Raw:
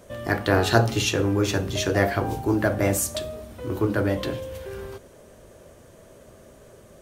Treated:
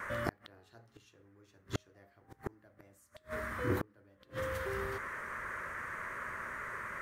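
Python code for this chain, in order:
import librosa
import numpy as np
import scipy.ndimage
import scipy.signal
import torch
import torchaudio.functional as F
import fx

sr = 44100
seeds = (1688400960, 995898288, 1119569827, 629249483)

y = fx.dmg_noise_band(x, sr, seeds[0], low_hz=1000.0, high_hz=2000.0, level_db=-39.0)
y = fx.gate_flip(y, sr, shuts_db=-17.0, range_db=-37)
y = y * 10.0 ** (-3.5 / 20.0)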